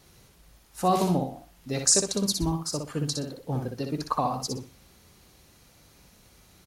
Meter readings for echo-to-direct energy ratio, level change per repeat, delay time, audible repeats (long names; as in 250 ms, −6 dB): −4.5 dB, −12.5 dB, 61 ms, 3